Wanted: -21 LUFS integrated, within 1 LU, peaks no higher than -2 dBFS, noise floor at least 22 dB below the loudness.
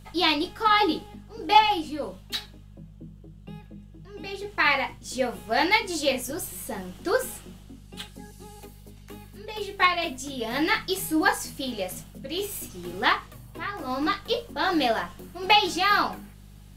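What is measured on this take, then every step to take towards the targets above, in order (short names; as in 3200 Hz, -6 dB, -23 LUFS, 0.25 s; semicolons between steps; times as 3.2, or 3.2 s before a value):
hum 50 Hz; harmonics up to 200 Hz; hum level -45 dBFS; loudness -25.5 LUFS; peak -3.0 dBFS; loudness target -21.0 LUFS
-> de-hum 50 Hz, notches 4; gain +4.5 dB; limiter -2 dBFS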